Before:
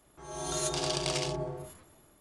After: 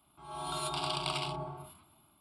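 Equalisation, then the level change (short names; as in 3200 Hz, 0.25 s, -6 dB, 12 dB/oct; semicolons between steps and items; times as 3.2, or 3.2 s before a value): dynamic EQ 1200 Hz, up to +5 dB, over -50 dBFS, Q 0.94; HPF 140 Hz 6 dB/oct; fixed phaser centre 1800 Hz, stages 6; 0.0 dB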